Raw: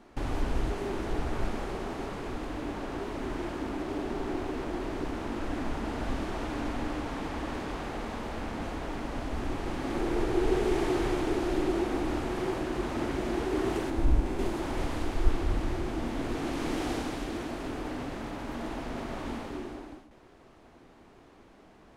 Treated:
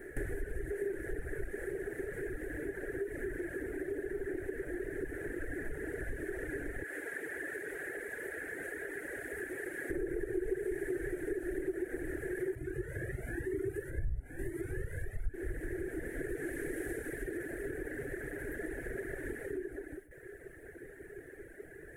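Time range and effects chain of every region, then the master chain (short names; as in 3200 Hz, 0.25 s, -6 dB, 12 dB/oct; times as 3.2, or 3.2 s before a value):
6.83–9.9 HPF 690 Hz 6 dB/oct + notch 5900 Hz, Q 22
12.55–15.34 bell 110 Hz +12 dB 1.1 oct + cascading flanger rising 1 Hz
whole clip: EQ curve 150 Hz 0 dB, 220 Hz -14 dB, 400 Hz +10 dB, 1100 Hz -25 dB, 1700 Hz +14 dB, 2700 Hz -13 dB, 4800 Hz -21 dB, 9800 Hz +11 dB; compressor 3:1, threshold -43 dBFS; reverb removal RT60 1.4 s; gain +6.5 dB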